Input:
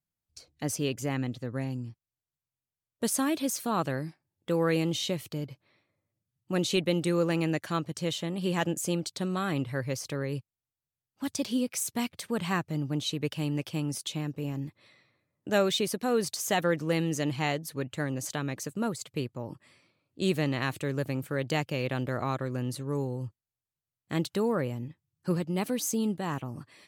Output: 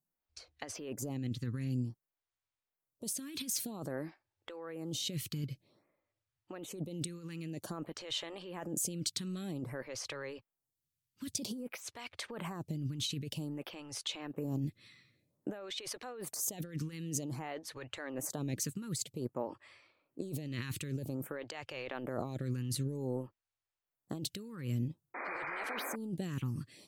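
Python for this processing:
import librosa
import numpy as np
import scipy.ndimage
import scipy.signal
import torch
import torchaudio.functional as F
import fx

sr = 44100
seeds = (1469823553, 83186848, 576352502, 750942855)

y = fx.over_compress(x, sr, threshold_db=-35.0, ratio=-1.0)
y = fx.spec_paint(y, sr, seeds[0], shape='noise', start_s=25.14, length_s=0.82, low_hz=230.0, high_hz=2500.0, level_db=-38.0)
y = fx.stagger_phaser(y, sr, hz=0.52)
y = F.gain(torch.from_numpy(y), -1.5).numpy()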